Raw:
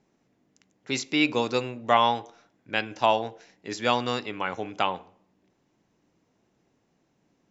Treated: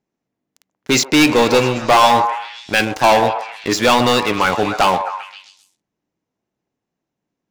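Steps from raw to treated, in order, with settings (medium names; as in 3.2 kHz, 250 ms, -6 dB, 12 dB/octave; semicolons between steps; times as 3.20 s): waveshaping leveller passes 5; repeats whose band climbs or falls 131 ms, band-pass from 760 Hz, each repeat 0.7 oct, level -6 dB; trim -1 dB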